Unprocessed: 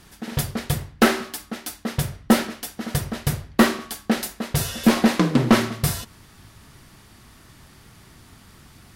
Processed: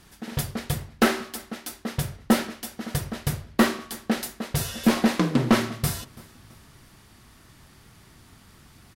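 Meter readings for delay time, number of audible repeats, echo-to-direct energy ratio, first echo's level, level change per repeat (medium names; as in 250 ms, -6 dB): 333 ms, 2, -23.0 dB, -24.0 dB, -7.0 dB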